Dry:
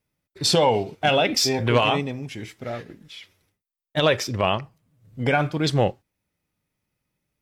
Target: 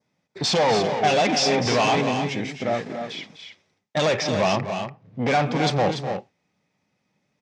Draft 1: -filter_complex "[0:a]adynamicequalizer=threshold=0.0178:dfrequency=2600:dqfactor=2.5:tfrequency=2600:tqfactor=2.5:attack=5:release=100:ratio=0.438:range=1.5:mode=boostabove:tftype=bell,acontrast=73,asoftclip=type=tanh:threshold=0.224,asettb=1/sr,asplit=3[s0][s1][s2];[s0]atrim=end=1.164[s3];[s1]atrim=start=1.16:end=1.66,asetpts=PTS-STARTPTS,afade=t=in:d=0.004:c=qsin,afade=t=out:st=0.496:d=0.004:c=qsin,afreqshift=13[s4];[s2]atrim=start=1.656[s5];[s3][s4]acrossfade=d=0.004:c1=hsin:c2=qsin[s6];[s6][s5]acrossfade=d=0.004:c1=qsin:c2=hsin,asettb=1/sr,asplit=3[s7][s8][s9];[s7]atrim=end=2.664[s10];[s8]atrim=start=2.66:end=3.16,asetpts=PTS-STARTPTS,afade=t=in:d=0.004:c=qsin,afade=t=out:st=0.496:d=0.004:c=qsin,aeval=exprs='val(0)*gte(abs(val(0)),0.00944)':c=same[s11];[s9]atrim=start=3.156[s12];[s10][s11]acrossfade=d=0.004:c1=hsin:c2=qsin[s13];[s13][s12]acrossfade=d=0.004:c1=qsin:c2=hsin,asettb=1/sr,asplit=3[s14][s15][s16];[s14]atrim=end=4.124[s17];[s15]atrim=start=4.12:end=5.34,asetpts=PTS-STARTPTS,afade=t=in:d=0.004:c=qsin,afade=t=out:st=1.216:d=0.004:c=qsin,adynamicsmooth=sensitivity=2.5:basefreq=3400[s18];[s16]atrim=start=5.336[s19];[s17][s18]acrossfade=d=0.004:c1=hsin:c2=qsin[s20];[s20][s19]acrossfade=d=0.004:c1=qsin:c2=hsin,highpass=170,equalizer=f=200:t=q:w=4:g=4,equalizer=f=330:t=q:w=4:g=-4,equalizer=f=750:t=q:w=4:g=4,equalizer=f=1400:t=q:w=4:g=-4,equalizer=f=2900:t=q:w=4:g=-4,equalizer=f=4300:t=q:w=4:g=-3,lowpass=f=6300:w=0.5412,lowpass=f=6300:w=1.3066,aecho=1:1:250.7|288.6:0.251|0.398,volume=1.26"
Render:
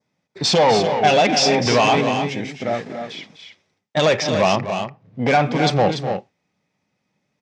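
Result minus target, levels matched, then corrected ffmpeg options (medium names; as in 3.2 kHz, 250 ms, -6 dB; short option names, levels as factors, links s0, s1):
saturation: distortion -5 dB
-filter_complex "[0:a]adynamicequalizer=threshold=0.0178:dfrequency=2600:dqfactor=2.5:tfrequency=2600:tqfactor=2.5:attack=5:release=100:ratio=0.438:range=1.5:mode=boostabove:tftype=bell,acontrast=73,asoftclip=type=tanh:threshold=0.106,asettb=1/sr,asplit=3[s0][s1][s2];[s0]atrim=end=1.164[s3];[s1]atrim=start=1.16:end=1.66,asetpts=PTS-STARTPTS,afade=t=in:d=0.004:c=qsin,afade=t=out:st=0.496:d=0.004:c=qsin,afreqshift=13[s4];[s2]atrim=start=1.656[s5];[s3][s4]acrossfade=d=0.004:c1=hsin:c2=qsin[s6];[s6][s5]acrossfade=d=0.004:c1=qsin:c2=hsin,asettb=1/sr,asplit=3[s7][s8][s9];[s7]atrim=end=2.664[s10];[s8]atrim=start=2.66:end=3.16,asetpts=PTS-STARTPTS,afade=t=in:d=0.004:c=qsin,afade=t=out:st=0.496:d=0.004:c=qsin,aeval=exprs='val(0)*gte(abs(val(0)),0.00944)':c=same[s11];[s9]atrim=start=3.156[s12];[s10][s11]acrossfade=d=0.004:c1=hsin:c2=qsin[s13];[s13][s12]acrossfade=d=0.004:c1=qsin:c2=hsin,asettb=1/sr,asplit=3[s14][s15][s16];[s14]atrim=end=4.124[s17];[s15]atrim=start=4.12:end=5.34,asetpts=PTS-STARTPTS,afade=t=in:d=0.004:c=qsin,afade=t=out:st=1.216:d=0.004:c=qsin,adynamicsmooth=sensitivity=2.5:basefreq=3400[s18];[s16]atrim=start=5.336[s19];[s17][s18]acrossfade=d=0.004:c1=hsin:c2=qsin[s20];[s20][s19]acrossfade=d=0.004:c1=qsin:c2=hsin,highpass=170,equalizer=f=200:t=q:w=4:g=4,equalizer=f=330:t=q:w=4:g=-4,equalizer=f=750:t=q:w=4:g=4,equalizer=f=1400:t=q:w=4:g=-4,equalizer=f=2900:t=q:w=4:g=-4,equalizer=f=4300:t=q:w=4:g=-3,lowpass=f=6300:w=0.5412,lowpass=f=6300:w=1.3066,aecho=1:1:250.7|288.6:0.251|0.398,volume=1.26"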